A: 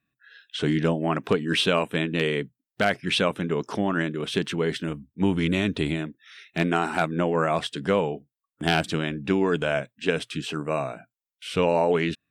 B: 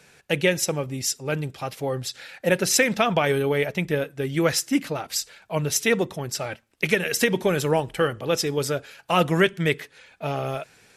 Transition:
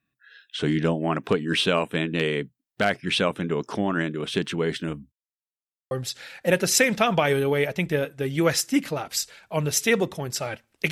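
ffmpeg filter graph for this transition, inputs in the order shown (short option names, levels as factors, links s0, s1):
-filter_complex "[0:a]apad=whole_dur=10.91,atrim=end=10.91,asplit=2[s0][s1];[s0]atrim=end=5.12,asetpts=PTS-STARTPTS,afade=t=out:st=5.116:d=0.004:c=hsin[s2];[s1]atrim=start=5.12:end=5.91,asetpts=PTS-STARTPTS,volume=0[s3];[1:a]atrim=start=1.9:end=6.9,asetpts=PTS-STARTPTS,afade=t=in:d=0.004:c=hsin[s4];[s2][s3][s4]concat=n=3:v=0:a=1"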